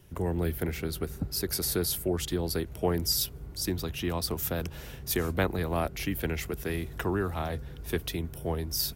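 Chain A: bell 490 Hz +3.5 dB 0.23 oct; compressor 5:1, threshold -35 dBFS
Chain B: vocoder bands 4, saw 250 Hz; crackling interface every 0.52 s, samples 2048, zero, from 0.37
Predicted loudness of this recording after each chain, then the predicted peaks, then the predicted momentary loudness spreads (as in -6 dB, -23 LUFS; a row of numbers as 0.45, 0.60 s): -38.5, -34.5 LUFS; -22.5, -16.5 dBFS; 4, 7 LU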